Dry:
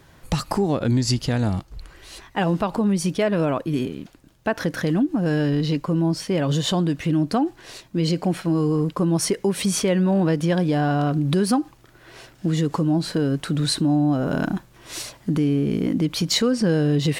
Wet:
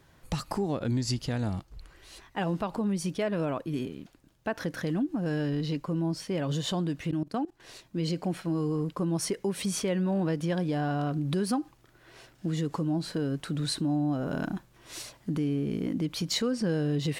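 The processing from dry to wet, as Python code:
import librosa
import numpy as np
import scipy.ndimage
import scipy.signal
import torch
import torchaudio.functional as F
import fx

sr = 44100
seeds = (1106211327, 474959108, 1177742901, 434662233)

y = fx.level_steps(x, sr, step_db=20, at=(7.11, 7.6))
y = y * 10.0 ** (-8.5 / 20.0)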